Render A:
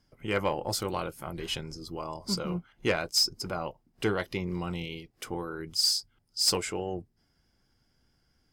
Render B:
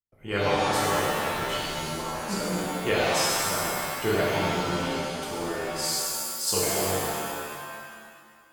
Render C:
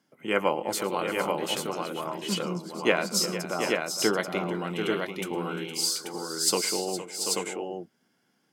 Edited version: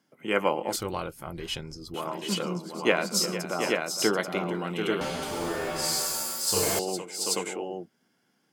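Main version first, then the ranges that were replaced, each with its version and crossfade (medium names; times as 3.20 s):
C
0.76–1.94 s: from A
5.01–6.79 s: from B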